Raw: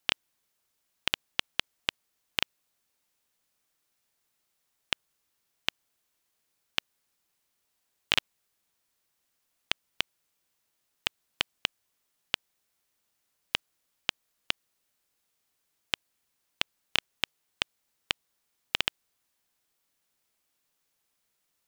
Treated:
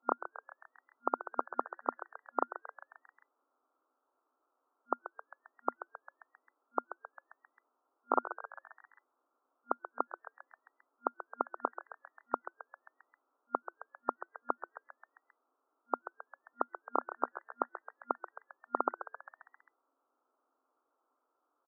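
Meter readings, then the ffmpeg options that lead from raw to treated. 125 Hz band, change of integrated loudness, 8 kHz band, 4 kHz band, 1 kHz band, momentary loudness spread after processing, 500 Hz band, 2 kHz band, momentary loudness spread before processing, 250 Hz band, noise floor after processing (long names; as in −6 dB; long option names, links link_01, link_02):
below −30 dB, −6.0 dB, below −30 dB, below −40 dB, +9.0 dB, 20 LU, +7.5 dB, −13.5 dB, 5 LU, +4.5 dB, −83 dBFS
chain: -filter_complex "[0:a]afftfilt=real='re*between(b*sr/4096,240,1400)':imag='im*between(b*sr/4096,240,1400)':win_size=4096:overlap=0.75,asplit=7[link_01][link_02][link_03][link_04][link_05][link_06][link_07];[link_02]adelay=133,afreqshift=99,volume=-12.5dB[link_08];[link_03]adelay=266,afreqshift=198,volume=-17.5dB[link_09];[link_04]adelay=399,afreqshift=297,volume=-22.6dB[link_10];[link_05]adelay=532,afreqshift=396,volume=-27.6dB[link_11];[link_06]adelay=665,afreqshift=495,volume=-32.6dB[link_12];[link_07]adelay=798,afreqshift=594,volume=-37.7dB[link_13];[link_01][link_08][link_09][link_10][link_11][link_12][link_13]amix=inputs=7:normalize=0,crystalizer=i=5.5:c=0,volume=6.5dB"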